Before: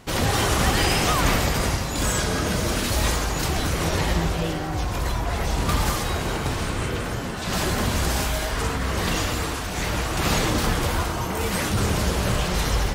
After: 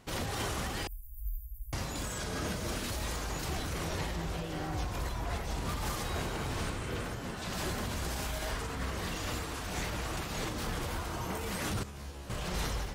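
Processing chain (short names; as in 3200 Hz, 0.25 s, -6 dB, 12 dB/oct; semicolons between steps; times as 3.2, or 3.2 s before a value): 0.87–1.73 inverse Chebyshev band-stop 260–3600 Hz, stop band 80 dB; limiter -17.5 dBFS, peak gain reduction 8.5 dB; 11.83–12.3 resonator 70 Hz, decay 0.54 s, harmonics all, mix 90%; noise-modulated level, depth 55%; gain -6 dB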